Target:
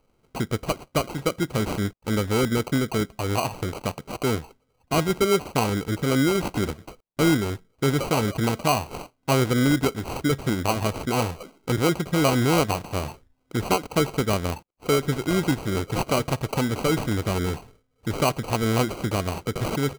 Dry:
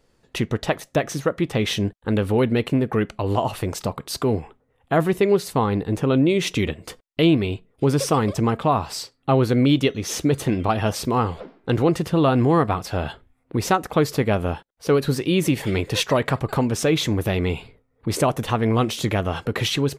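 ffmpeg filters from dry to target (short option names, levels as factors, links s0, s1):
-af "acrusher=samples=25:mix=1:aa=0.000001,volume=0.708"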